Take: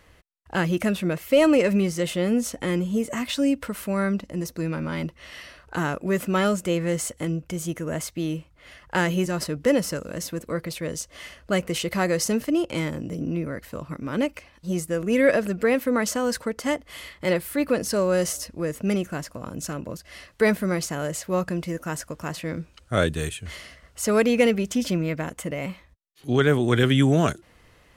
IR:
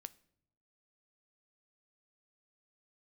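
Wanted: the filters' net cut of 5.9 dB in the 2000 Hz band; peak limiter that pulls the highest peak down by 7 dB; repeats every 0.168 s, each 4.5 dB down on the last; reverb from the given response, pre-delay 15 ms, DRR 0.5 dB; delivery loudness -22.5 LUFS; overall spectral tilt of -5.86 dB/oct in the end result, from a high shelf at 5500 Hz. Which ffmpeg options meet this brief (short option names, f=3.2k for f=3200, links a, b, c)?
-filter_complex "[0:a]equalizer=f=2k:t=o:g=-7,highshelf=f=5.5k:g=-4.5,alimiter=limit=-15.5dB:level=0:latency=1,aecho=1:1:168|336|504|672|840|1008|1176|1344|1512:0.596|0.357|0.214|0.129|0.0772|0.0463|0.0278|0.0167|0.01,asplit=2[a][b];[1:a]atrim=start_sample=2205,adelay=15[c];[b][c]afir=irnorm=-1:irlink=0,volume=5dB[d];[a][d]amix=inputs=2:normalize=0,volume=0.5dB"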